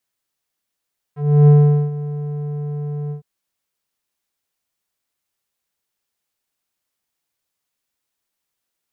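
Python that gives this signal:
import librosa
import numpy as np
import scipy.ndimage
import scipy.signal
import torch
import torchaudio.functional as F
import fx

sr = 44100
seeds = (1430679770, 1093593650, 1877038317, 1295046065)

y = fx.sub_voice(sr, note=50, wave='square', cutoff_hz=410.0, q=0.87, env_oct=2.0, env_s=0.07, attack_ms=315.0, decay_s=0.43, sustain_db=-17, release_s=0.11, note_s=1.95, slope=12)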